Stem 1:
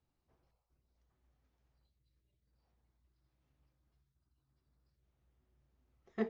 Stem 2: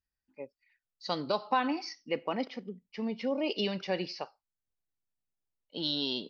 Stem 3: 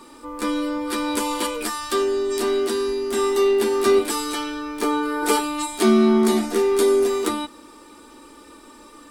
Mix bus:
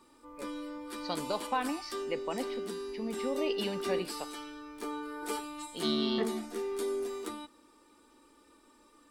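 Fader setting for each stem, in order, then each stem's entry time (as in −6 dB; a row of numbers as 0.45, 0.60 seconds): +2.5, −3.5, −16.5 decibels; 0.00, 0.00, 0.00 seconds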